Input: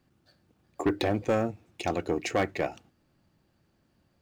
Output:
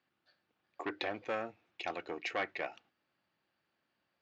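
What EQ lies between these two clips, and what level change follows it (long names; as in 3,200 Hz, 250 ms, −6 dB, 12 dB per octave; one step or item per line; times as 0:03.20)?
resonant band-pass 3,700 Hz, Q 0.52
high-frequency loss of the air 160 metres
high-shelf EQ 5,900 Hz −8 dB
+1.0 dB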